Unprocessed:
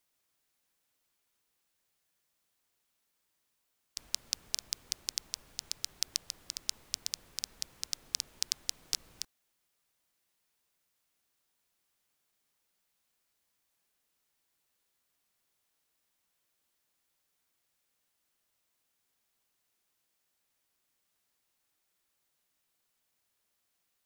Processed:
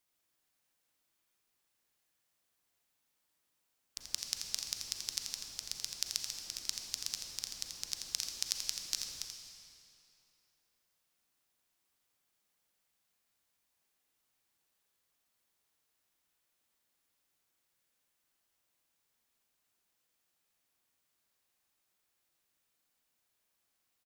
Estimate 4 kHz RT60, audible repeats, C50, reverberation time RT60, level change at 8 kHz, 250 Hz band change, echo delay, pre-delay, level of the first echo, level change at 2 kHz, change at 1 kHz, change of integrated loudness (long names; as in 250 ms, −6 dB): 2.3 s, 1, 2.0 dB, 2.8 s, −1.0 dB, −0.5 dB, 84 ms, 34 ms, −6.0 dB, −0.5 dB, −0.5 dB, −1.0 dB